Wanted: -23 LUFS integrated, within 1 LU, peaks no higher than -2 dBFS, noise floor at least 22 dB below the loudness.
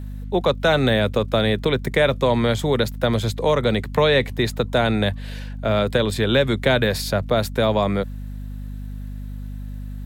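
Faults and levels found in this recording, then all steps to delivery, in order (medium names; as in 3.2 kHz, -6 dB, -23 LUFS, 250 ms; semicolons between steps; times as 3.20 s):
tick rate 21 per s; hum 50 Hz; highest harmonic 250 Hz; hum level -29 dBFS; loudness -20.5 LUFS; peak level -6.0 dBFS; loudness target -23.0 LUFS
-> de-click; de-hum 50 Hz, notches 5; trim -2.5 dB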